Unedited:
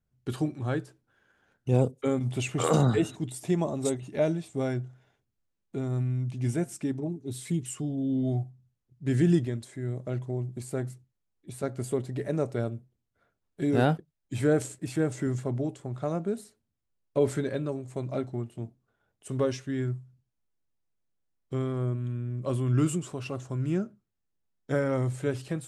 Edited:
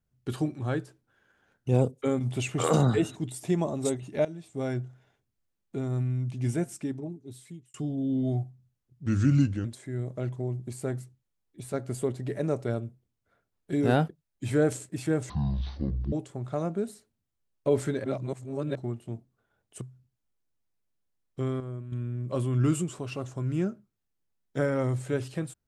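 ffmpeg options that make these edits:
-filter_complex "[0:a]asplit=12[s0][s1][s2][s3][s4][s5][s6][s7][s8][s9][s10][s11];[s0]atrim=end=4.25,asetpts=PTS-STARTPTS,afade=t=out:st=4.246:d=0.004:c=hsin:silence=0.141254[s12];[s1]atrim=start=4.25:end=7.74,asetpts=PTS-STARTPTS,afade=t=in:d=0.51:silence=0.141254,afade=t=out:st=2.36:d=1.13[s13];[s2]atrim=start=7.74:end=9.064,asetpts=PTS-STARTPTS,afade=t=in:d=0.004:c=hsin[s14];[s3]atrim=start=9.06:end=9.54,asetpts=PTS-STARTPTS,asetrate=36162,aresample=44100[s15];[s4]atrim=start=9.536:end=15.194[s16];[s5]atrim=start=15.19:end=15.62,asetpts=PTS-STARTPTS,asetrate=22932,aresample=44100,atrim=end_sample=36467,asetpts=PTS-STARTPTS[s17];[s6]atrim=start=15.616:end=17.542[s18];[s7]atrim=start=17.538:end=18.252,asetpts=PTS-STARTPTS,areverse[s19];[s8]atrim=start=18.248:end=19.312[s20];[s9]atrim=start=19.948:end=21.742[s21];[s10]atrim=start=21.738:end=22.062,asetpts=PTS-STARTPTS,volume=0.398[s22];[s11]atrim=start=22.058[s23];[s12][s13][s14]concat=n=3:v=0:a=1[s24];[s24][s15]acrossfade=d=0.004:c1=hsin:c2=hsin[s25];[s25][s16]acrossfade=d=0.004:c1=hsin:c2=hsin[s26];[s26][s17]acrossfade=d=0.004:c1=hsin:c2=hsin[s27];[s27][s18]acrossfade=d=0.004:c1=hsin:c2=hsin[s28];[s28][s19]acrossfade=d=0.004:c1=hsin:c2=hsin[s29];[s29][s20]acrossfade=d=0.004:c1=hsin:c2=hsin[s30];[s30][s21]acrossfade=d=0.004:c1=hsin:c2=hsin[s31];[s31][s22]acrossfade=d=0.004:c1=hsin:c2=hsin[s32];[s32][s23]acrossfade=d=0.004:c1=hsin:c2=hsin"

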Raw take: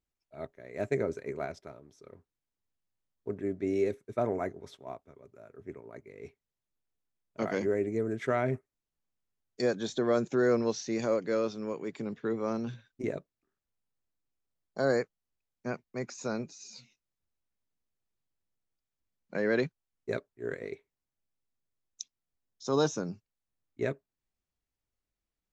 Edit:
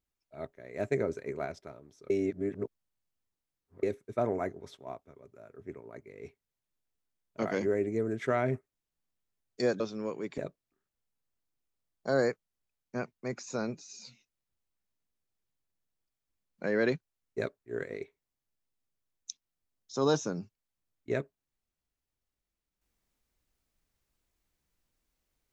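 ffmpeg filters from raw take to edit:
-filter_complex "[0:a]asplit=5[s0][s1][s2][s3][s4];[s0]atrim=end=2.102[s5];[s1]atrim=start=2.098:end=3.832,asetpts=PTS-STARTPTS,areverse[s6];[s2]atrim=start=3.828:end=9.802[s7];[s3]atrim=start=11.428:end=12.012[s8];[s4]atrim=start=13.088[s9];[s5][s6]acrossfade=d=0.004:c1=hsin:c2=hsin[s10];[s10][s7]acrossfade=d=0.004:c1=hsin:c2=hsin[s11];[s11][s8]acrossfade=d=0.004:c1=hsin:c2=hsin[s12];[s12][s9]acrossfade=d=0.004:c1=hsin:c2=hsin"

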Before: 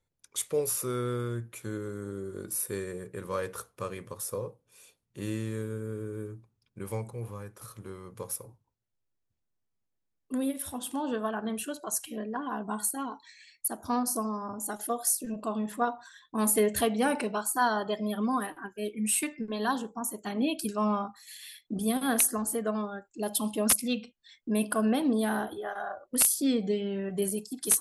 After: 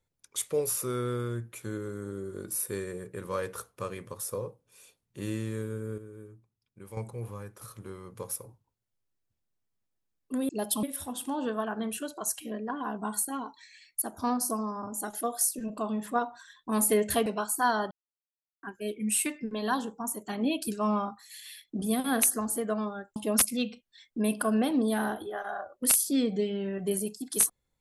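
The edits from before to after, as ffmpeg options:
-filter_complex "[0:a]asplit=9[s0][s1][s2][s3][s4][s5][s6][s7][s8];[s0]atrim=end=5.982[s9];[s1]atrim=start=5.978:end=6.972,asetpts=PTS-STARTPTS,volume=0.355[s10];[s2]atrim=start=6.968:end=10.492[s11];[s3]atrim=start=23.128:end=23.472[s12];[s4]atrim=start=10.488:end=16.922[s13];[s5]atrim=start=17.228:end=17.88,asetpts=PTS-STARTPTS,afade=t=out:st=0.648:d=0.004:c=hsin[s14];[s6]atrim=start=17.88:end=18.6,asetpts=PTS-STARTPTS,volume=0[s15];[s7]atrim=start=18.6:end=23.132,asetpts=PTS-STARTPTS,afade=t=in:d=0.004:c=hsin[s16];[s8]atrim=start=23.468[s17];[s9][s10]acrossfade=d=0.004:c1=hsin:c2=hsin[s18];[s18][s11]acrossfade=d=0.004:c1=hsin:c2=hsin[s19];[s19][s12]acrossfade=d=0.004:c1=hsin:c2=hsin[s20];[s20][s13]acrossfade=d=0.004:c1=hsin:c2=hsin[s21];[s14][s15][s16]concat=n=3:v=0:a=1[s22];[s21][s22]acrossfade=d=0.004:c1=hsin:c2=hsin[s23];[s23][s17]acrossfade=d=0.004:c1=hsin:c2=hsin"

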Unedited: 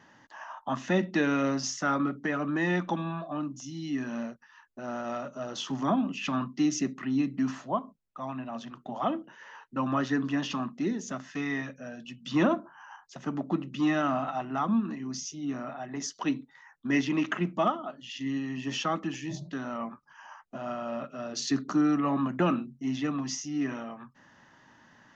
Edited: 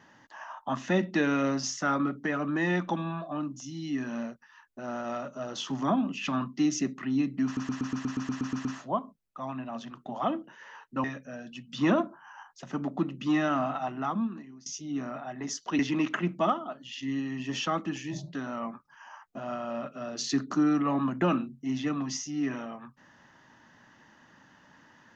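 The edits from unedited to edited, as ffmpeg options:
-filter_complex "[0:a]asplit=14[s0][s1][s2][s3][s4][s5][s6][s7][s8][s9][s10][s11][s12][s13];[s0]atrim=end=7.572[s14];[s1]atrim=start=7.448:end=7.572[s15];[s2]atrim=start=7.448:end=7.572[s16];[s3]atrim=start=7.448:end=7.572[s17];[s4]atrim=start=7.448:end=7.572[s18];[s5]atrim=start=7.448:end=7.572[s19];[s6]atrim=start=7.448:end=7.572[s20];[s7]atrim=start=7.448:end=7.572[s21];[s8]atrim=start=7.448:end=7.572[s22];[s9]atrim=start=7.448:end=7.572[s23];[s10]atrim=start=7.448:end=9.842[s24];[s11]atrim=start=11.568:end=15.19,asetpts=PTS-STARTPTS,afade=t=out:st=2.902:d=0.72:silence=0.0749894[s25];[s12]atrim=start=15.19:end=16.322,asetpts=PTS-STARTPTS,afade=t=in:d=0.004:c=hsin:silence=0.0749894[s26];[s13]atrim=start=16.968[s27];[s14][s15]acrossfade=d=0.004:c1=hsin:c2=hsin[s28];[s28][s16]acrossfade=d=0.004:c1=hsin:c2=hsin[s29];[s29][s17]acrossfade=d=0.004:c1=hsin:c2=hsin[s30];[s30][s18]acrossfade=d=0.004:c1=hsin:c2=hsin[s31];[s31][s19]acrossfade=d=0.004:c1=hsin:c2=hsin[s32];[s32][s20]acrossfade=d=0.004:c1=hsin:c2=hsin[s33];[s33][s21]acrossfade=d=0.004:c1=hsin:c2=hsin[s34];[s34][s22]acrossfade=d=0.004:c1=hsin:c2=hsin[s35];[s35][s23]acrossfade=d=0.004:c1=hsin:c2=hsin[s36];[s36][s24]acrossfade=d=0.004:c1=hsin:c2=hsin[s37];[s25][s26]concat=n=2:v=0:a=1[s38];[s37][s38]acrossfade=d=0.004:c1=hsin:c2=hsin[s39];[s39][s27]acrossfade=d=0.004:c1=hsin:c2=hsin"

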